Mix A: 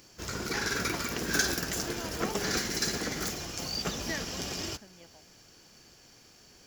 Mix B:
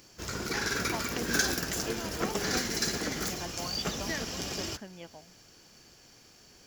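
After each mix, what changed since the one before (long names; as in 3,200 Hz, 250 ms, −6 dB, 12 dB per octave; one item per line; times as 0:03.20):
speech +9.0 dB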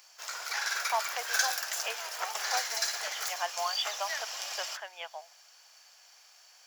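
speech +11.0 dB
master: add Butterworth high-pass 660 Hz 36 dB per octave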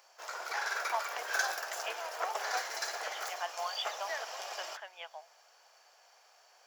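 speech −4.5 dB
background: add tilt shelving filter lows +9.5 dB, about 1,300 Hz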